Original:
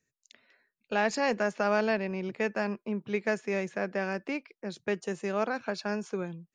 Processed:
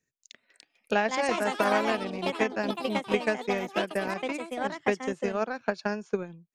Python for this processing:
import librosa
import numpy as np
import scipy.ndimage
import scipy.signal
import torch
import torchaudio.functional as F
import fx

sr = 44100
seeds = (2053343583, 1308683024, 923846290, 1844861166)

y = fx.echo_pitch(x, sr, ms=355, semitones=4, count=3, db_per_echo=-3.0)
y = fx.transient(y, sr, attack_db=9, sustain_db=-6)
y = y * 10.0 ** (-2.0 / 20.0)